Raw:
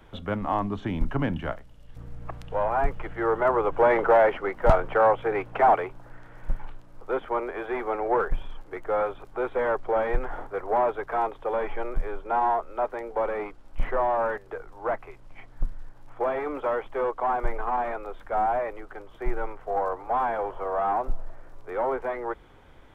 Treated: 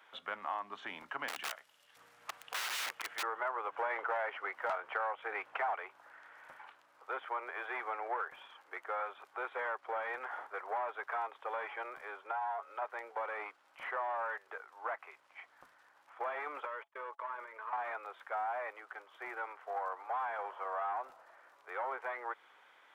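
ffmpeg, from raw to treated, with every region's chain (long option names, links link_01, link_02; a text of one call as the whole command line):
ffmpeg -i in.wav -filter_complex "[0:a]asettb=1/sr,asplit=3[link_01][link_02][link_03];[link_01]atrim=end=1.284[link_04];[link_02]atrim=start=1.28:end=3.23,asetpts=PTS-STARTPTS,afade=type=in:duration=0.004:curve=qsin,afade=type=out:start_time=1.946:duration=0.004:curve=qsin,highshelf=frequency=3400:gain=9,aeval=exprs='(mod(17.8*val(0)+1,2)-1)/17.8':channel_layout=same[link_05];[link_03]atrim=start=3.226[link_06];[link_04][link_05]acrossfade=duration=0.004:curve1=hsin:curve2=qsin[link_07];[link_07][link_06]acrossfade=duration=0.004:curve1=qsin:curve2=hsin,asettb=1/sr,asplit=3[link_08][link_09][link_10];[link_08]atrim=end=12.314[link_11];[link_09]atrim=start=12.31:end=12.82,asetpts=PTS-STARTPTS,afade=type=in:duration=0.004:curve=qsin,afade=type=out:start_time=0.506:duration=0.004:curve=qsin,acompressor=threshold=-28dB:ratio=2.5:attack=3.2:release=140:knee=1:detection=peak,aecho=1:1:7.1:0.45,atrim=end_sample=22491[link_12];[link_10]atrim=start=12.816[link_13];[link_11][link_12]acrossfade=duration=0.004:curve1=hsin:curve2=qsin[link_14];[link_14][link_13]acrossfade=duration=0.004:curve1=qsin:curve2=hsin,asettb=1/sr,asplit=3[link_15][link_16][link_17];[link_15]atrim=end=16.654[link_18];[link_16]atrim=start=16.65:end=17.73,asetpts=PTS-STARTPTS,afade=type=in:duration=0.004:curve=qsin,afade=type=out:start_time=1.076:duration=0.004:curve=qsin,agate=range=-33dB:threshold=-36dB:ratio=16:release=100:detection=peak,acompressor=threshold=-31dB:ratio=4:attack=3.2:release=140:knee=1:detection=peak,asuperstop=centerf=760:order=20:qfactor=4.9[link_19];[link_17]atrim=start=17.726[link_20];[link_18][link_19]acrossfade=duration=0.004:curve1=hsin:curve2=qsin[link_21];[link_21][link_20]acrossfade=duration=0.004:curve1=qsin:curve2=hsin,highpass=1400,highshelf=frequency=2400:gain=-10.5,acompressor=threshold=-39dB:ratio=3,volume=4dB" out.wav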